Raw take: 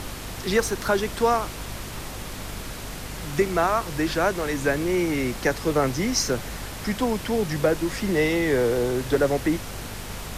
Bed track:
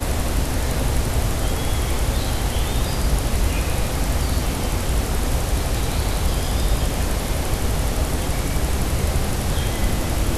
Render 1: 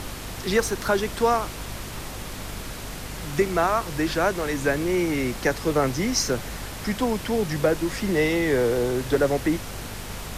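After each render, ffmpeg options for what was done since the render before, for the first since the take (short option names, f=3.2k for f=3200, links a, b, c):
-af anull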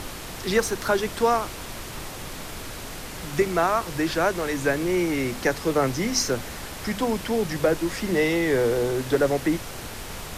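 -af "bandreject=f=50:t=h:w=6,bandreject=f=100:t=h:w=6,bandreject=f=150:t=h:w=6,bandreject=f=200:t=h:w=6,bandreject=f=250:t=h:w=6"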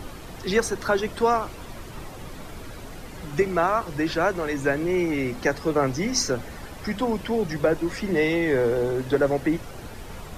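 -af "afftdn=nr=10:nf=-37"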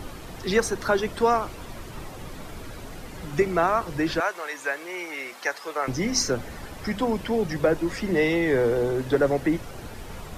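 -filter_complex "[0:a]asettb=1/sr,asplit=3[a][b][c];[a]atrim=end=4.204[d];[b]atrim=start=4.2:end=5.88,asetpts=PTS-STARTPTS,afade=t=in:d=0.004:c=qsin,afade=t=out:st=1.676:d=0.004:c=qsin,highpass=810[e];[c]atrim=start=5.876[f];[d][e]acrossfade=d=0.004:c1=hsin:c2=qsin[g];[g][f]acrossfade=d=0.004:c1=qsin:c2=hsin"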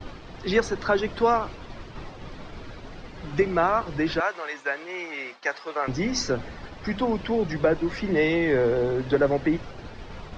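-af "lowpass=f=5.2k:w=0.5412,lowpass=f=5.2k:w=1.3066,agate=range=-33dB:threshold=-35dB:ratio=3:detection=peak"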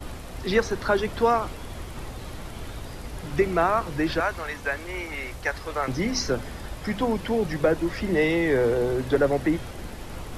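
-filter_complex "[1:a]volume=-18dB[a];[0:a][a]amix=inputs=2:normalize=0"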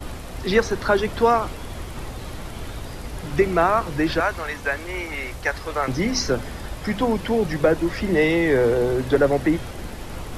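-af "volume=3.5dB"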